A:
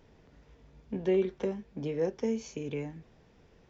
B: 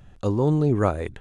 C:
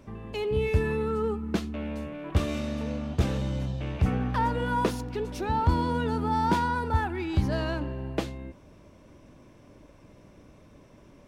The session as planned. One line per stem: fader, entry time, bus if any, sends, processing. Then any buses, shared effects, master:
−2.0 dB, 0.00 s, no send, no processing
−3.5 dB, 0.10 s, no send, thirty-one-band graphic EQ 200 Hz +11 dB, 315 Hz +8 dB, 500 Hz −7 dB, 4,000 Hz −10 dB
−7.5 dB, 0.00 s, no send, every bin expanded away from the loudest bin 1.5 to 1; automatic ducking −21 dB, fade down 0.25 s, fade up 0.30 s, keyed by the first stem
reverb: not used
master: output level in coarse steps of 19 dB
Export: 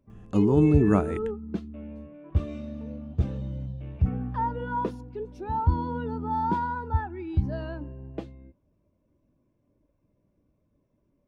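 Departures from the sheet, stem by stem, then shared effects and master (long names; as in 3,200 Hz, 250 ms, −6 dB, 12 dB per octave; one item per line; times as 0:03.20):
stem A: muted
stem C −7.5 dB → +0.5 dB
master: missing output level in coarse steps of 19 dB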